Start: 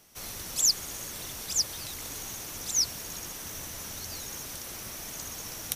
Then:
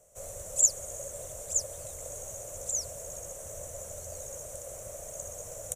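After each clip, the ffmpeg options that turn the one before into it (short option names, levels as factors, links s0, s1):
-af "firequalizer=gain_entry='entry(100,0);entry(250,-16);entry(370,-8);entry(560,14);entry(830,-8);entry(1700,-13);entry(4900,-23);entry(7100,6);entry(12000,-11)':delay=0.05:min_phase=1"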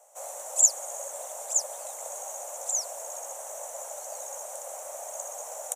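-af "highpass=f=830:t=q:w=4.9,volume=1.41"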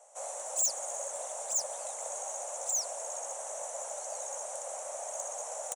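-af "aresample=22050,aresample=44100,asoftclip=type=tanh:threshold=0.0562"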